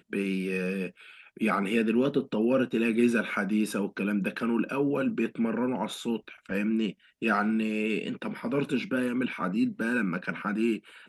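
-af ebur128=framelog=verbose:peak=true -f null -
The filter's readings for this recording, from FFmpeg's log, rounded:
Integrated loudness:
  I:         -28.6 LUFS
  Threshold: -38.7 LUFS
Loudness range:
  LRA:         2.8 LU
  Threshold: -48.5 LUFS
  LRA low:   -29.7 LUFS
  LRA high:  -27.0 LUFS
True peak:
  Peak:      -12.1 dBFS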